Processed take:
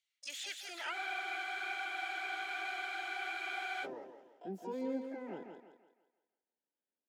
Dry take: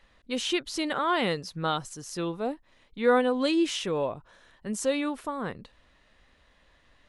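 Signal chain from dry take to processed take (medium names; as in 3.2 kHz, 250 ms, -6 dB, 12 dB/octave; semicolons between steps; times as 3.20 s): Doppler pass-by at 2.86 s, 41 m/s, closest 21 m; steep high-pass 170 Hz 36 dB/octave; tilt shelf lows -4.5 dB, about 1.1 kHz; reverse; compression 12:1, threshold -38 dBFS, peak gain reduction 20.5 dB; reverse; waveshaping leveller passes 3; band-pass sweep 3.4 kHz -> 310 Hz, 0.03–1.72 s; harmony voices +12 st -4 dB; Butterworth band-stop 1.1 kHz, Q 4.1; on a send: thinning echo 168 ms, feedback 42%, high-pass 230 Hz, level -5.5 dB; on the sum: spectral freeze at 0.95 s, 2.90 s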